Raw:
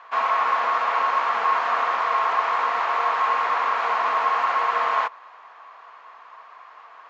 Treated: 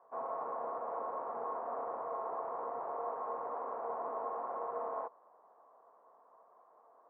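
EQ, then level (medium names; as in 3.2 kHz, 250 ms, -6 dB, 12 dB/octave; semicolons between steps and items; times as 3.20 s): four-pole ladder low-pass 740 Hz, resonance 25%; -1.5 dB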